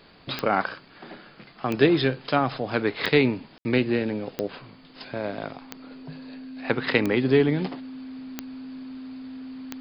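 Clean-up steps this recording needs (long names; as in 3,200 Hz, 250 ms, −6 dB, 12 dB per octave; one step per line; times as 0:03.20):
click removal
notch filter 260 Hz, Q 30
ambience match 0:03.58–0:03.65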